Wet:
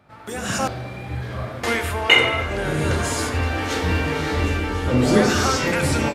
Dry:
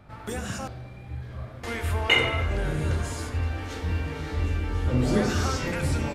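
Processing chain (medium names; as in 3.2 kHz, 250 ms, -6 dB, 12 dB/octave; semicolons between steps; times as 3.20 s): level rider gain up to 16 dB; high-pass 220 Hz 6 dB/octave; trim -1 dB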